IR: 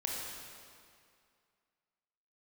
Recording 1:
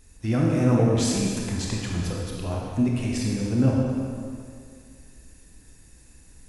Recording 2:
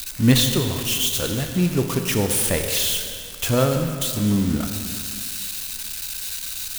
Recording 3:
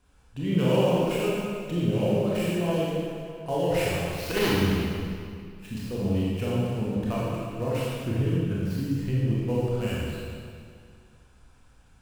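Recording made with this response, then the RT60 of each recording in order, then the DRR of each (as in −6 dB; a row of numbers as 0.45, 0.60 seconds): 1; 2.3, 2.3, 2.3 seconds; −2.5, 5.0, −7.5 decibels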